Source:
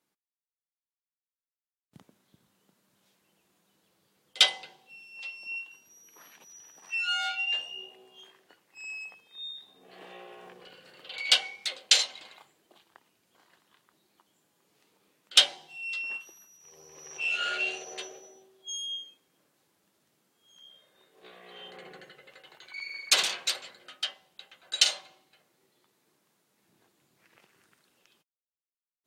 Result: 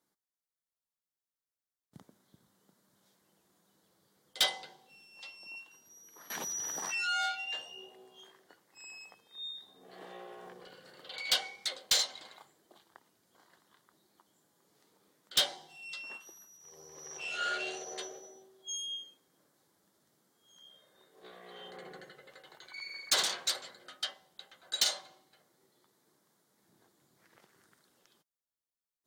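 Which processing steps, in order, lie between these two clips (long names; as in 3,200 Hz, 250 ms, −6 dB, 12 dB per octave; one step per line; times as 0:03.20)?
parametric band 2,600 Hz −11.5 dB 0.42 octaves
soft clipping −20 dBFS, distortion −8 dB
0:06.30–0:07.26: envelope flattener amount 70%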